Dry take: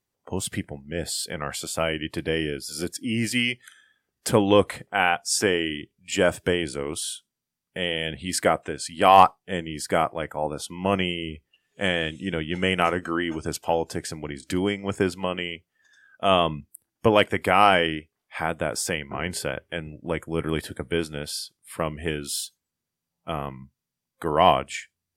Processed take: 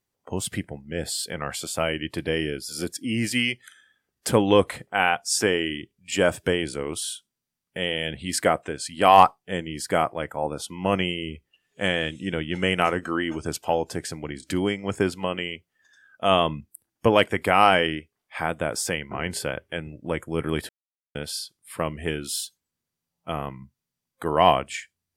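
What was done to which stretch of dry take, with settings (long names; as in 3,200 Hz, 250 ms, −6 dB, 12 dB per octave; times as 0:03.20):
0:20.69–0:21.15: silence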